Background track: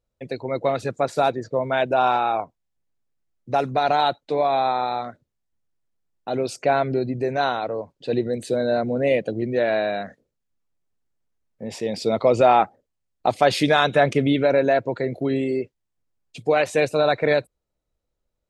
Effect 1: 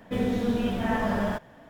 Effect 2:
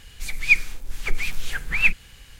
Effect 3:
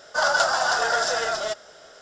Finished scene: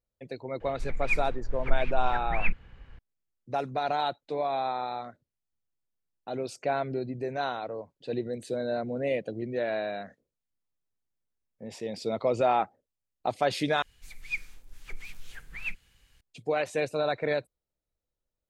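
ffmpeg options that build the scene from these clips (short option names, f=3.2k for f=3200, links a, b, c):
-filter_complex "[2:a]asplit=2[a][b];[0:a]volume=-9dB[c];[a]lowpass=1.3k[d];[c]asplit=2[e][f];[e]atrim=end=13.824[g];[b]atrim=end=2.39,asetpts=PTS-STARTPTS,volume=-16.5dB[h];[f]atrim=start=16.206[i];[d]atrim=end=2.39,asetpts=PTS-STARTPTS,volume=-1.5dB,afade=t=in:d=0.004:c=hsin,afade=t=out:st=2.386:d=0.004:c=hsin,adelay=600[j];[g][h]acrossfade=d=0.004:c1=hsin:c2=hsin[k];[k][i]acrossfade=d=0.004:c1=hsin:c2=hsin[l];[l][j]amix=inputs=2:normalize=0"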